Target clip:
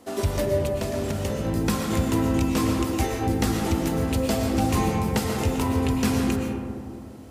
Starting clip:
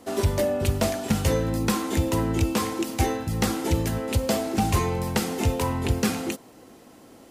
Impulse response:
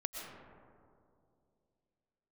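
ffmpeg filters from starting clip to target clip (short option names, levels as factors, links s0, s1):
-filter_complex "[0:a]asettb=1/sr,asplit=3[s0][s1][s2];[s0]atrim=end=0.454[s3];[s1]atrim=start=0.45:end=1.45,asetpts=PTS-STARTPTS,afade=t=in:d=0.004:c=qsin,afade=t=out:st=0.996:d=0.004:c=qsin,acompressor=threshold=0.0447:ratio=3[s4];[s2]atrim=start=1.446[s5];[s3][s4]acrossfade=d=0.004:c1=hsin:c2=qsin[s6];[s6][s5]acrossfade=d=0.004:c1=qsin:c2=hsin[s7];[1:a]atrim=start_sample=2205[s8];[s7][s8]afir=irnorm=-1:irlink=0"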